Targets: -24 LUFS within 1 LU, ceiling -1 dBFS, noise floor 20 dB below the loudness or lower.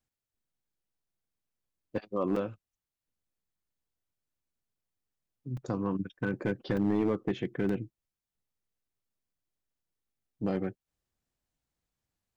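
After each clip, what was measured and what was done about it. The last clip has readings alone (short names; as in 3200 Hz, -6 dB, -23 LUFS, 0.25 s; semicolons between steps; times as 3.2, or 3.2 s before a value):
clipped 0.5%; flat tops at -21.5 dBFS; dropouts 4; longest dropout 3.7 ms; loudness -33.0 LUFS; peak -21.5 dBFS; loudness target -24.0 LUFS
-> clip repair -21.5 dBFS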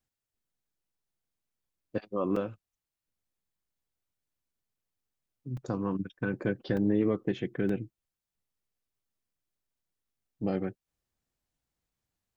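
clipped 0.0%; dropouts 4; longest dropout 3.7 ms
-> interpolate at 2.36/5.57/6.77/7.69, 3.7 ms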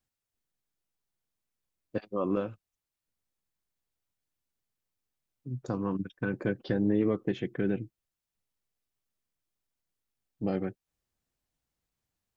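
dropouts 0; loudness -32.5 LUFS; peak -15.5 dBFS; loudness target -24.0 LUFS
-> gain +8.5 dB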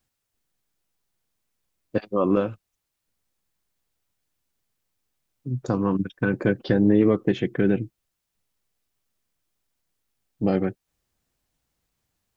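loudness -24.0 LUFS; peak -7.0 dBFS; noise floor -81 dBFS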